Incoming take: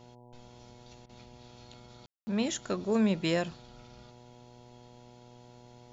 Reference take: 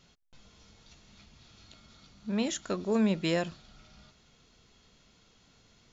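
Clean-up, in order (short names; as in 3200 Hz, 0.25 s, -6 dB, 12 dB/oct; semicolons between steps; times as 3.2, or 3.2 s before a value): de-hum 121.8 Hz, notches 8; room tone fill 2.06–2.27; interpolate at 1.06, 31 ms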